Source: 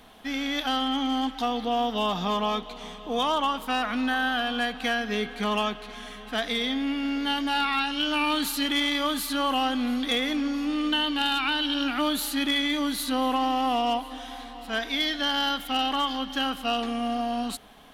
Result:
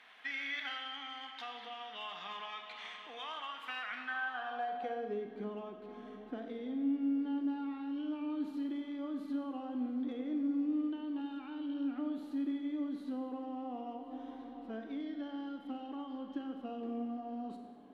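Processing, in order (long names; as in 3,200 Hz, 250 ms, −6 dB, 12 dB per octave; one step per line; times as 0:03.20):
downward compressor 6 to 1, threshold −32 dBFS, peak gain reduction 11 dB
band-pass filter sweep 2,000 Hz → 330 Hz, 0:03.87–0:05.22
four-comb reverb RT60 1.3 s, combs from 32 ms, DRR 5 dB
level +2 dB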